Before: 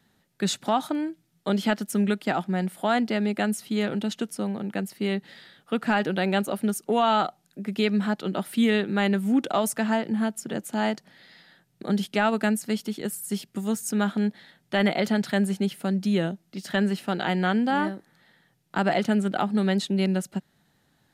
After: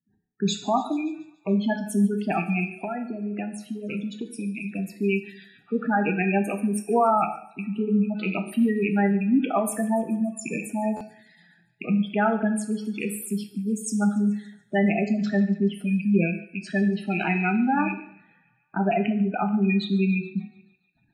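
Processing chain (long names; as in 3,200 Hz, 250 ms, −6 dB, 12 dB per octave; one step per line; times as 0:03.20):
loose part that buzzes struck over −38 dBFS, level −15 dBFS
noise gate with hold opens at −55 dBFS
notch filter 550 Hz, Q 12
hum removal 374.1 Hz, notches 7
gate on every frequency bin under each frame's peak −10 dB strong
0:02.64–0:04.79: downward compressor, threshold −30 dBFS, peak gain reduction 9.5 dB
delay with a high-pass on its return 143 ms, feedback 65%, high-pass 2,000 Hz, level −19 dB
dense smooth reverb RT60 0.64 s, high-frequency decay 0.9×, DRR 5.5 dB
buffer that repeats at 0:10.96, samples 512, times 3
one half of a high-frequency compander decoder only
level +1.5 dB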